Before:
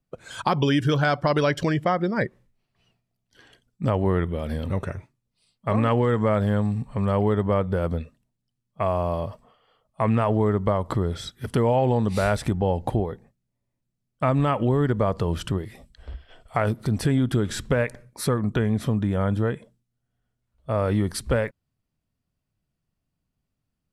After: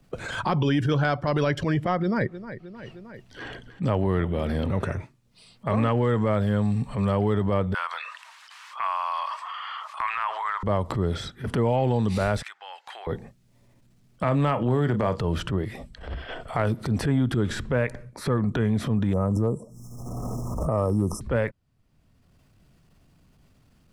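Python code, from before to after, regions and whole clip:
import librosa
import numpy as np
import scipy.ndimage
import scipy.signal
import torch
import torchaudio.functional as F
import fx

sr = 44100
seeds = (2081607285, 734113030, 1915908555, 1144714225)

y = fx.chain(x, sr, fx.high_shelf(hz=8500.0, db=-4.5),
    fx.echo_feedback(ms=310, feedback_pct=37, wet_db=-20.5), at=(1.98, 4.83))
y = fx.chain(y, sr, fx.ellip_highpass(hz=1000.0, order=4, stop_db=80),
    fx.air_absorb(metres=53.0),
    fx.env_flatten(amount_pct=50), at=(7.74, 10.63))
y = fx.chain(y, sr, fx.highpass(hz=1400.0, slope=24),
    fx.peak_eq(hz=11000.0, db=-9.0, octaves=0.56), at=(12.42, 13.07))
y = fx.chain(y, sr, fx.highpass(hz=100.0, slope=24),
    fx.doubler(ms=33.0, db=-13), at=(14.23, 15.2))
y = fx.chain(y, sr, fx.brickwall_bandstop(low_hz=1300.0, high_hz=5100.0),
    fx.pre_swell(db_per_s=32.0), at=(19.13, 21.21))
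y = fx.high_shelf(y, sr, hz=9400.0, db=-9.0)
y = fx.transient(y, sr, attack_db=-10, sustain_db=3)
y = fx.band_squash(y, sr, depth_pct=70)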